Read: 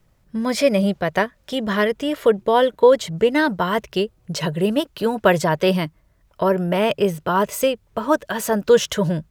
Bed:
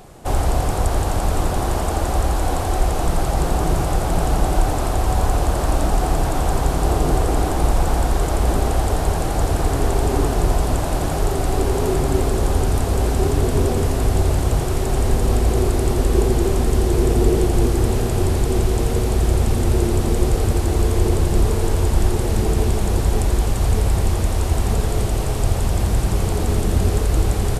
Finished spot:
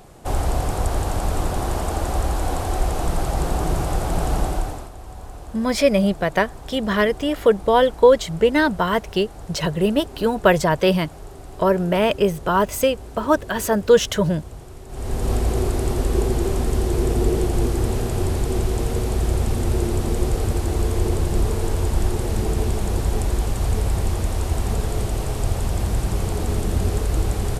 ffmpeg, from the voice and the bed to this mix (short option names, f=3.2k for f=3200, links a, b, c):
-filter_complex "[0:a]adelay=5200,volume=0.5dB[a];[1:a]volume=12.5dB,afade=t=out:st=4.39:d=0.51:silence=0.158489,afade=t=in:st=14.88:d=0.43:silence=0.16788[b];[a][b]amix=inputs=2:normalize=0"